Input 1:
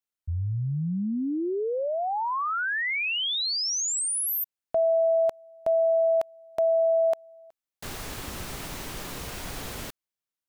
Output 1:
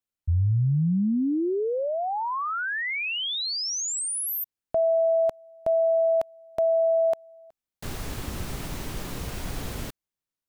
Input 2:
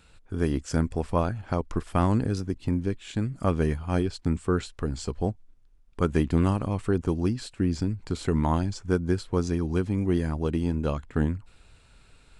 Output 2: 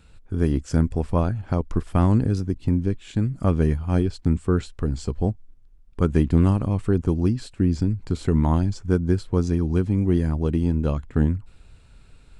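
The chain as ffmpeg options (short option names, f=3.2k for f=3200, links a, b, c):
-af "lowshelf=f=350:g=8.5,volume=-1.5dB"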